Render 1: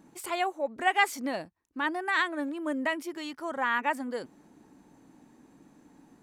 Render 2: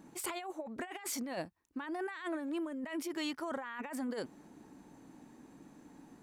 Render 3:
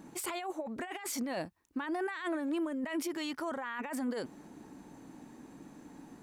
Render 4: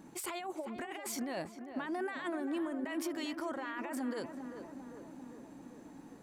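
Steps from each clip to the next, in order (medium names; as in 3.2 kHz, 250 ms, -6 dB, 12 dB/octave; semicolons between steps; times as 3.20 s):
compressor with a negative ratio -36 dBFS, ratio -1; trim -4 dB
peak limiter -32 dBFS, peak gain reduction 7 dB; trim +4.5 dB
tape echo 396 ms, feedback 73%, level -7 dB, low-pass 1.6 kHz; trim -2.5 dB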